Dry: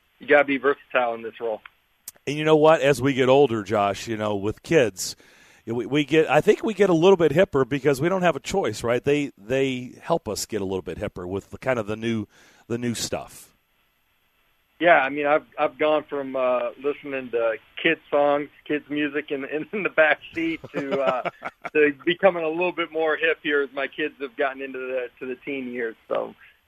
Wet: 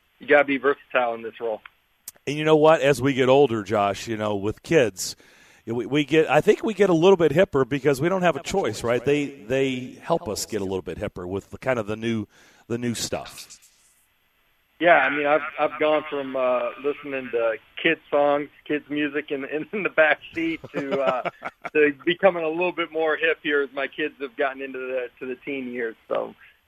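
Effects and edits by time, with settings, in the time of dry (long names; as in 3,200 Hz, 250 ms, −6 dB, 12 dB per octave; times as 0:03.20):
0:08.25–0:10.80: feedback echo with a swinging delay time 107 ms, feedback 48%, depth 60 cents, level −19 dB
0:13.01–0:17.50: echo through a band-pass that steps 122 ms, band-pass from 1,700 Hz, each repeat 0.7 octaves, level −4.5 dB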